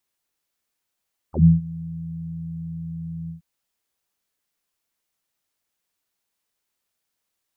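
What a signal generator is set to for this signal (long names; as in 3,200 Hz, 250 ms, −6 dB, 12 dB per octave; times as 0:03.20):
subtractive voice saw E2 24 dB per octave, low-pass 170 Hz, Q 12, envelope 3 octaves, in 0.07 s, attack 96 ms, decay 0.18 s, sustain −22.5 dB, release 0.12 s, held 1.96 s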